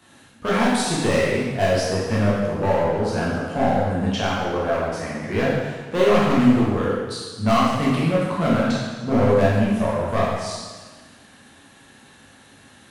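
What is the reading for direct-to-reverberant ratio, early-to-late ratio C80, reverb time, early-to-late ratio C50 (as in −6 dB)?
−7.5 dB, 1.0 dB, 1.4 s, −1.0 dB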